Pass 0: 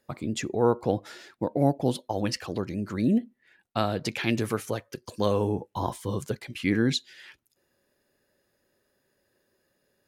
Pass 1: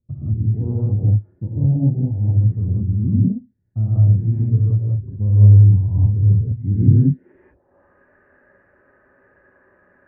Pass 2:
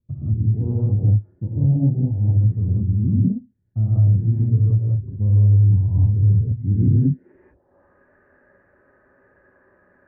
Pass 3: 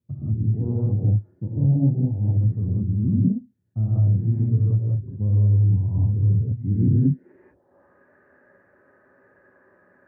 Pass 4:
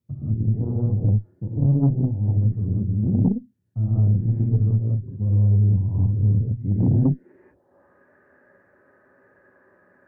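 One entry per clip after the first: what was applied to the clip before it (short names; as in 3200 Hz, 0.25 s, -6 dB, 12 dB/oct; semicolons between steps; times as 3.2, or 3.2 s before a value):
steep low-pass 2300 Hz 36 dB/oct; low-pass sweep 110 Hz -> 1500 Hz, 6.75–7.84; non-linear reverb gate 0.22 s rising, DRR -7.5 dB; gain +7 dB
limiter -9 dBFS, peak gain reduction 7 dB; air absorption 330 m
HPF 110 Hz
added harmonics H 4 -19 dB, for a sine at -9 dBFS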